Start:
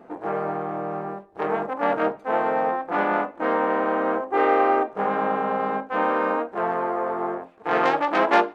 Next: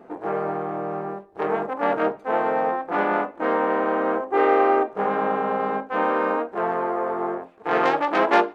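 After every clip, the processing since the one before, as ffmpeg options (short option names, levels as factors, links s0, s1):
-af "equalizer=f=400:w=4.6:g=3.5"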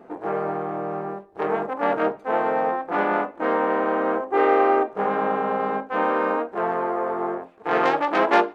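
-af anull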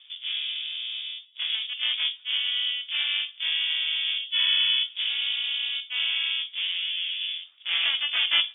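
-af "lowpass=f=3200:t=q:w=0.5098,lowpass=f=3200:t=q:w=0.6013,lowpass=f=3200:t=q:w=0.9,lowpass=f=3200:t=q:w=2.563,afreqshift=-3800,volume=0.562"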